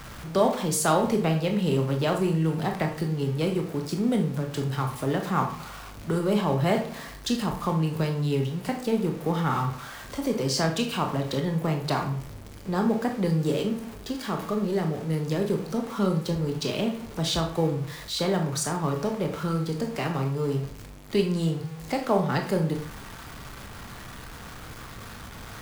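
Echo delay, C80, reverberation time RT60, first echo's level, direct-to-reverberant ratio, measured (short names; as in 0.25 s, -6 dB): none, 13.0 dB, 0.50 s, none, 3.0 dB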